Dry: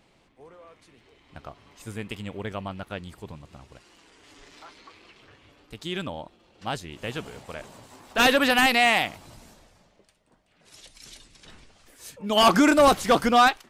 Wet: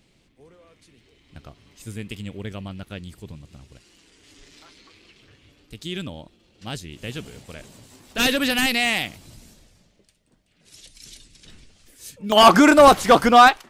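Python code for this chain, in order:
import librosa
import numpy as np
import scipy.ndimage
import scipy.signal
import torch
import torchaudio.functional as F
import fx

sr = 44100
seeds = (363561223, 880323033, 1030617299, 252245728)

y = fx.peak_eq(x, sr, hz=930.0, db=fx.steps((0.0, -12.5), (12.32, 3.0)), octaves=2.0)
y = y * 10.0 ** (4.0 / 20.0)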